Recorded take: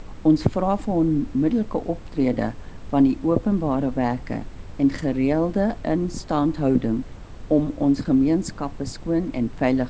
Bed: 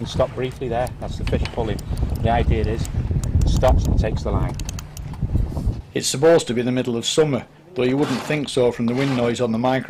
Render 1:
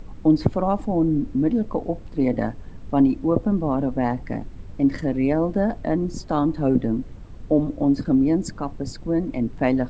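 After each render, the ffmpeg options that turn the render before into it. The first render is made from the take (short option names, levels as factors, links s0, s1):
-af "afftdn=nr=8:nf=-39"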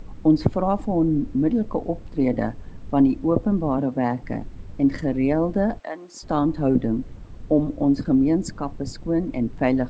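-filter_complex "[0:a]asettb=1/sr,asplit=3[s0][s1][s2];[s0]atrim=end=3.784[s3];[s1]atrim=start=3.78:end=4.23,asetpts=PTS-STARTPTS,afade=t=in:d=0.004:c=qsin,afade=t=out:st=0.446:d=0.004:c=qsin,highpass=f=100:w=0.5412,highpass=f=100:w=1.3066[s4];[s2]atrim=start=4.226[s5];[s3][s4]acrossfade=d=0.004:c1=hsin:c2=qsin[s6];[s6][s5]acrossfade=d=0.004:c1=qsin:c2=hsin,asplit=3[s7][s8][s9];[s7]afade=t=out:st=5.78:d=0.02[s10];[s8]highpass=810,afade=t=in:st=5.78:d=0.02,afade=t=out:st=6.22:d=0.02[s11];[s9]afade=t=in:st=6.22:d=0.02[s12];[s10][s11][s12]amix=inputs=3:normalize=0"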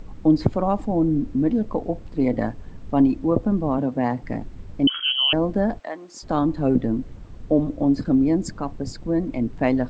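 -filter_complex "[0:a]asettb=1/sr,asplit=3[s0][s1][s2];[s0]atrim=end=4.874[s3];[s1]atrim=start=4.87:end=5.33,asetpts=PTS-STARTPTS,afade=t=in:d=0.004:c=qsin,afade=t=out:st=0.456:d=0.004:c=qsin,lowpass=f=2800:t=q:w=0.5098,lowpass=f=2800:t=q:w=0.6013,lowpass=f=2800:t=q:w=0.9,lowpass=f=2800:t=q:w=2.563,afreqshift=-3300[s4];[s2]atrim=start=5.326[s5];[s3][s4]acrossfade=d=0.004:c1=hsin:c2=qsin[s6];[s6][s5]acrossfade=d=0.004:c1=qsin:c2=hsin"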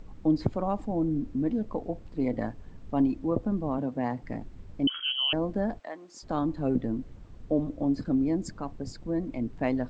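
-af "volume=0.422"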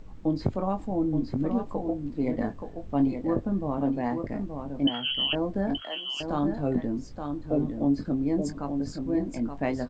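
-filter_complex "[0:a]asplit=2[s0][s1];[s1]adelay=21,volume=0.422[s2];[s0][s2]amix=inputs=2:normalize=0,aecho=1:1:875:0.473"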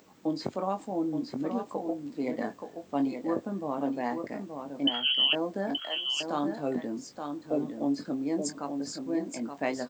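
-af "highpass=170,aemphasis=mode=production:type=bsi"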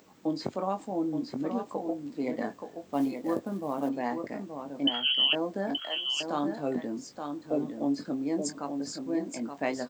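-filter_complex "[0:a]asettb=1/sr,asplit=3[s0][s1][s2];[s0]atrim=end=2.884[s3];[s1]atrim=start=2.88:end=3.89,asetpts=PTS-STARTPTS,afade=t=in:d=0.004:c=qsin,afade=t=out:st=1.006:d=0.004:c=qsin,acrusher=bits=7:mode=log:mix=0:aa=0.000001[s4];[s2]atrim=start=3.886[s5];[s3][s4]acrossfade=d=0.004:c1=hsin:c2=qsin[s6];[s6][s5]acrossfade=d=0.004:c1=qsin:c2=hsin"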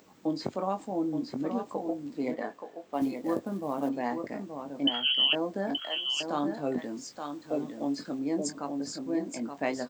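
-filter_complex "[0:a]asettb=1/sr,asplit=3[s0][s1][s2];[s0]atrim=end=2.344[s3];[s1]atrim=start=2.34:end=3.02,asetpts=PTS-STARTPTS,afade=t=in:d=0.004:c=qsin,afade=t=out:st=0.676:d=0.004:c=qsin,bass=f=250:g=-13,treble=f=4000:g=-6[s4];[s2]atrim=start=3.016[s5];[s3][s4]acrossfade=d=0.004:c1=hsin:c2=qsin[s6];[s6][s5]acrossfade=d=0.004:c1=qsin:c2=hsin,asettb=1/sr,asplit=3[s7][s8][s9];[s7]atrim=end=6.784[s10];[s8]atrim=start=6.78:end=8.19,asetpts=PTS-STARTPTS,afade=t=in:d=0.004:c=qsin,afade=t=out:st=1.406:d=0.004:c=qsin,tiltshelf=f=850:g=-3.5[s11];[s9]atrim=start=8.186[s12];[s10][s11]acrossfade=d=0.004:c1=hsin:c2=qsin[s13];[s13][s12]acrossfade=d=0.004:c1=qsin:c2=hsin"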